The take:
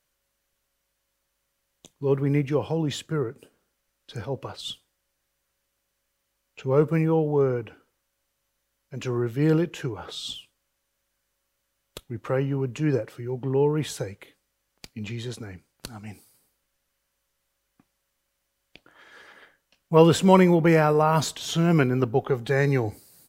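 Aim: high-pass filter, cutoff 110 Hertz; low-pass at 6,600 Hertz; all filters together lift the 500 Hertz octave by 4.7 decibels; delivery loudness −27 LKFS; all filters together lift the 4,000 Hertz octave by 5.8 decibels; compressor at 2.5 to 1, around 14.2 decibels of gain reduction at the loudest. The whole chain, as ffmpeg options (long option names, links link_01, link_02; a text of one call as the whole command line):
ffmpeg -i in.wav -af "highpass=110,lowpass=6600,equalizer=frequency=500:width_type=o:gain=5.5,equalizer=frequency=4000:width_type=o:gain=7.5,acompressor=threshold=-29dB:ratio=2.5,volume=3.5dB" out.wav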